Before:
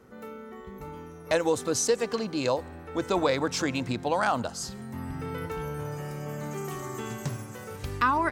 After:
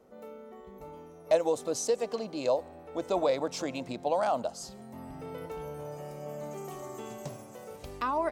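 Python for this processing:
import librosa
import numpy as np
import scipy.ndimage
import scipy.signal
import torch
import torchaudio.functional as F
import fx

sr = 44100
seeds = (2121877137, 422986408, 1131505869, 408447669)

y = fx.graphic_eq_15(x, sr, hz=(100, 630, 1600), db=(-11, 11, -7))
y = y * 10.0 ** (-7.0 / 20.0)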